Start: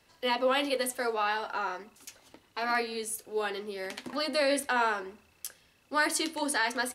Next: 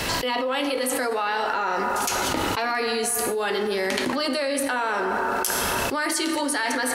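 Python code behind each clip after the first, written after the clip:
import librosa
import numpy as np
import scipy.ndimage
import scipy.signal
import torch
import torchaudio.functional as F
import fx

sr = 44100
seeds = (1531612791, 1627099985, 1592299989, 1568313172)

y = fx.rev_plate(x, sr, seeds[0], rt60_s=1.8, hf_ratio=0.5, predelay_ms=0, drr_db=9.5)
y = fx.env_flatten(y, sr, amount_pct=100)
y = y * 10.0 ** (-2.0 / 20.0)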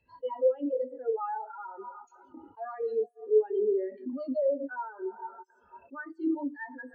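y = scipy.signal.sosfilt(scipy.signal.butter(4, 8200.0, 'lowpass', fs=sr, output='sos'), x)
y = fx.spectral_expand(y, sr, expansion=4.0)
y = y * 10.0 ** (-5.0 / 20.0)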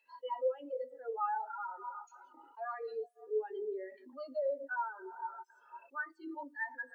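y = scipy.signal.sosfilt(scipy.signal.butter(2, 1000.0, 'highpass', fs=sr, output='sos'), x)
y = y * 10.0 ** (3.5 / 20.0)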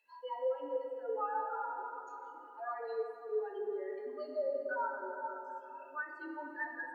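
y = fx.room_shoebox(x, sr, seeds[1], volume_m3=210.0, walls='hard', distance_m=0.43)
y = y * 10.0 ** (-2.0 / 20.0)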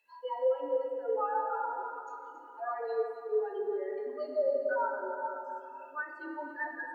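y = fx.dynamic_eq(x, sr, hz=560.0, q=0.96, threshold_db=-46.0, ratio=4.0, max_db=4)
y = y + 10.0 ** (-12.5 / 20.0) * np.pad(y, (int(274 * sr / 1000.0), 0))[:len(y)]
y = y * 10.0 ** (2.0 / 20.0)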